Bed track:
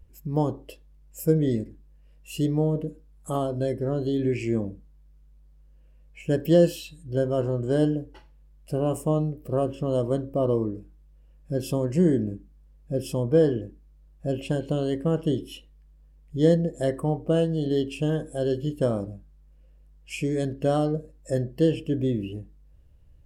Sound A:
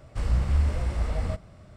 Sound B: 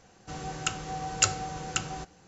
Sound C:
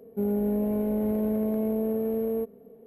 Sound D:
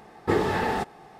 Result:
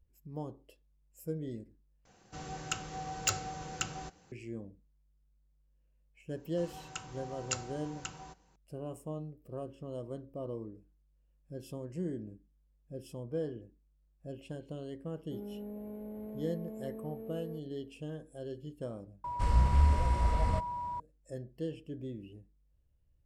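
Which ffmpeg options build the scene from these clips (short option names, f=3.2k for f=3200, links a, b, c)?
-filter_complex "[2:a]asplit=2[a][b];[0:a]volume=-16.5dB[c];[a]asoftclip=type=hard:threshold=-15dB[d];[b]equalizer=f=960:w=7.2:g=10[e];[1:a]aeval=exprs='val(0)+0.0224*sin(2*PI*970*n/s)':c=same[f];[c]asplit=3[g][h][i];[g]atrim=end=2.054[j];[d]atrim=end=2.27,asetpts=PTS-STARTPTS,volume=-5.5dB[k];[h]atrim=start=4.316:end=19.244[l];[f]atrim=end=1.76,asetpts=PTS-STARTPTS,volume=-2dB[m];[i]atrim=start=20.996[n];[e]atrim=end=2.27,asetpts=PTS-STARTPTS,volume=-12.5dB,afade=t=in:d=0.004:c=hsin,afade=t=out:st=2.266:d=0.004:c=hsin,adelay=6290[o];[3:a]atrim=end=2.86,asetpts=PTS-STARTPTS,volume=-17dB,afade=t=in:d=0.004:c=hsin,afade=t=out:st=2.856:d=0.004:c=hsin,adelay=15140[p];[j][k]acrossfade=d=0.004:c1=hsin:c2=hsin[q];[q][l]acrossfade=d=0.004:c1=hsin:c2=hsin[r];[r][m]acrossfade=d=0.004:c1=hsin:c2=hsin[s];[s][n]acrossfade=d=0.004:c1=hsin:c2=hsin[t];[t][o][p]amix=inputs=3:normalize=0"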